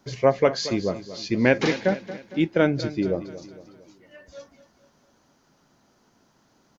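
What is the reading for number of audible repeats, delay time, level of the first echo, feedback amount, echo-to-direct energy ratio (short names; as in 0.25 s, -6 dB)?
4, 0.229 s, -14.5 dB, 49%, -13.5 dB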